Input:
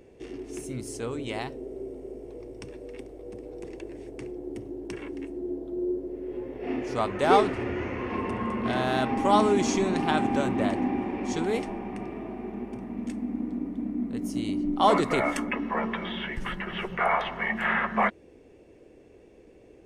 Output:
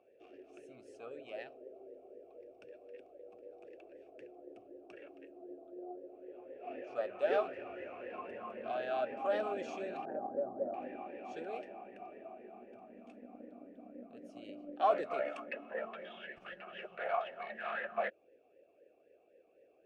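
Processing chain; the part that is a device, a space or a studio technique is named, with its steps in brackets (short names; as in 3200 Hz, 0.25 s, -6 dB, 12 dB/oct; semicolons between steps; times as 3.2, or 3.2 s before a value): 10.05–10.74 inverse Chebyshev low-pass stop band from 4800 Hz, stop band 80 dB; talk box (tube stage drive 14 dB, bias 0.65; vowel sweep a-e 3.9 Hz); gain +2.5 dB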